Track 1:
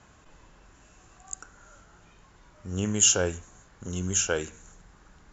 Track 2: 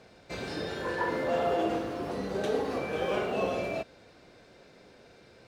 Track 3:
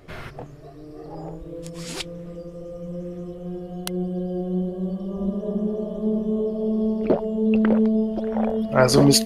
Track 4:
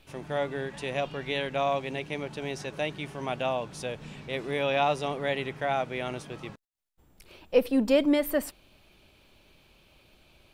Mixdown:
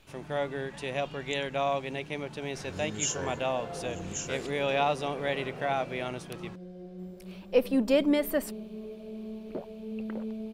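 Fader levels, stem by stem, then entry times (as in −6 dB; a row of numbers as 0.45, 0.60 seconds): −11.0, −12.5, −17.5, −1.5 decibels; 0.00, 2.25, 2.45, 0.00 seconds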